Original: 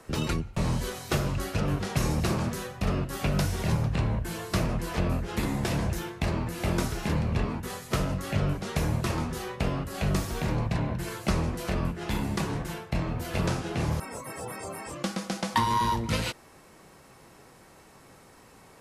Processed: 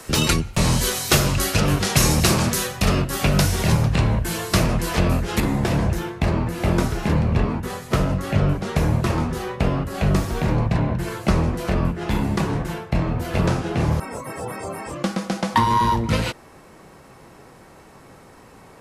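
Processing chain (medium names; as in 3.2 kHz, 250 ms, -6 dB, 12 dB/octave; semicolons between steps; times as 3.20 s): treble shelf 2.5 kHz +10.5 dB, from 3.02 s +4.5 dB, from 5.40 s -6.5 dB; trim +8 dB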